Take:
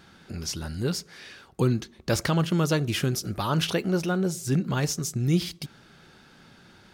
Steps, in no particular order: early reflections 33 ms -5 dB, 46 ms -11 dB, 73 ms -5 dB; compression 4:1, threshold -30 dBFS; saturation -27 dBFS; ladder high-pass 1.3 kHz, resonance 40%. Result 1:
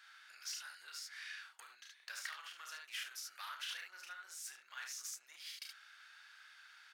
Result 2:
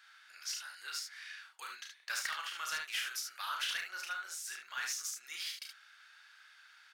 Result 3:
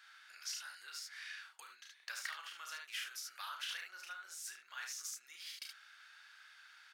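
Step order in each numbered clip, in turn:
early reflections > compression > saturation > ladder high-pass; ladder high-pass > compression > saturation > early reflections; early reflections > compression > ladder high-pass > saturation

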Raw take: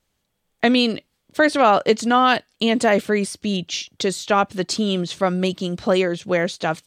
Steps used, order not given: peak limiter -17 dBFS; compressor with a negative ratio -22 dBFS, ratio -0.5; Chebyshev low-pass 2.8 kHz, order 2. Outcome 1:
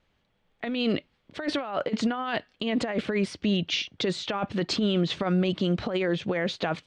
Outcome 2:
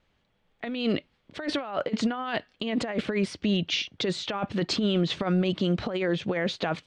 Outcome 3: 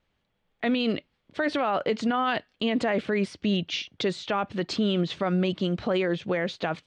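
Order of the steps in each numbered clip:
Chebyshev low-pass > compressor with a negative ratio > peak limiter; compressor with a negative ratio > Chebyshev low-pass > peak limiter; Chebyshev low-pass > peak limiter > compressor with a negative ratio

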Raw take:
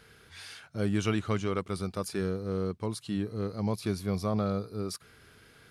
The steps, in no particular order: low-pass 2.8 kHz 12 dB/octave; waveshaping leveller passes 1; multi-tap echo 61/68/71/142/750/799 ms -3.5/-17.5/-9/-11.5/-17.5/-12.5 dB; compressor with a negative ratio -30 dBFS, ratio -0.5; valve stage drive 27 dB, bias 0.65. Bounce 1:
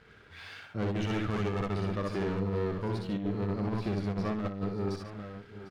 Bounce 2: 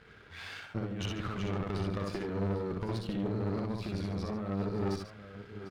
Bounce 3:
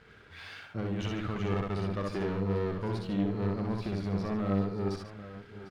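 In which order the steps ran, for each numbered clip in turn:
low-pass > valve stage > waveshaping leveller > multi-tap echo > compressor with a negative ratio; low-pass > waveshaping leveller > compressor with a negative ratio > multi-tap echo > valve stage; compressor with a negative ratio > valve stage > low-pass > waveshaping leveller > multi-tap echo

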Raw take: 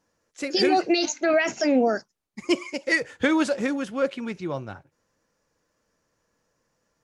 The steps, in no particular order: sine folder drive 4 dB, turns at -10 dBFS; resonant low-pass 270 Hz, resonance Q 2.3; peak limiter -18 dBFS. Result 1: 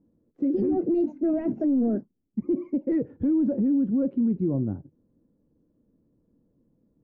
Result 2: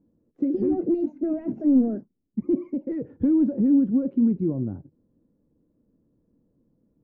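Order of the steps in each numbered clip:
sine folder > resonant low-pass > peak limiter; sine folder > peak limiter > resonant low-pass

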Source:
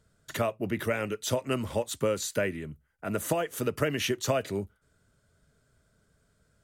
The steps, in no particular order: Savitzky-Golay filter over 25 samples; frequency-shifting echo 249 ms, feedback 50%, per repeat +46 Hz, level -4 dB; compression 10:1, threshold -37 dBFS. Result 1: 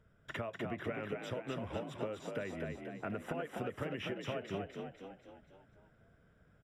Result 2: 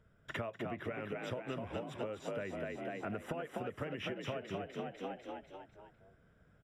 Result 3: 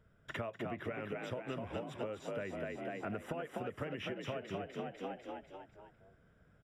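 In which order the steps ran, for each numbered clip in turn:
compression > Savitzky-Golay filter > frequency-shifting echo; Savitzky-Golay filter > frequency-shifting echo > compression; frequency-shifting echo > compression > Savitzky-Golay filter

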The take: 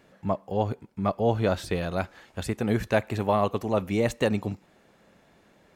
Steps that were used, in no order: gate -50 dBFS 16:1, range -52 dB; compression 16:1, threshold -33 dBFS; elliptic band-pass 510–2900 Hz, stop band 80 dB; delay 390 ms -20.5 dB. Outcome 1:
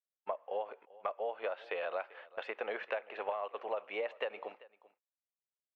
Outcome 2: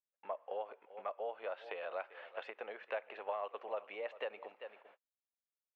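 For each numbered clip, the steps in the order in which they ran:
elliptic band-pass > gate > compression > delay; delay > gate > compression > elliptic band-pass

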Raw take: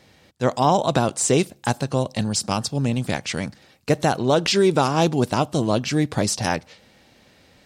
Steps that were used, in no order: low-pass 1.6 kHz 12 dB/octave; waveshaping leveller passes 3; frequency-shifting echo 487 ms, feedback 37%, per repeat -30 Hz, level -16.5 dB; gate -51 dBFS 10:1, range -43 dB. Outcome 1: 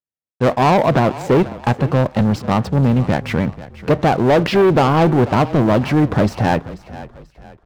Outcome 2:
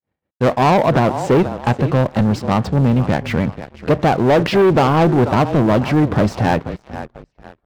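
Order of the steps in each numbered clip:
low-pass > waveshaping leveller > gate > frequency-shifting echo; low-pass > gate > frequency-shifting echo > waveshaping leveller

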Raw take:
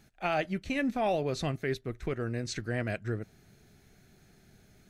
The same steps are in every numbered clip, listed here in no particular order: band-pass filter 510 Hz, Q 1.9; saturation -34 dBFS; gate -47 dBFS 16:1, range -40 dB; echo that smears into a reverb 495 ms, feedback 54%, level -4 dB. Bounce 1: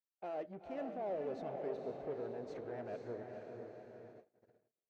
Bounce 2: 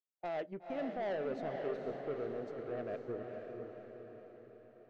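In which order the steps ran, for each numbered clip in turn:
saturation > echo that smears into a reverb > gate > band-pass filter; band-pass filter > saturation > gate > echo that smears into a reverb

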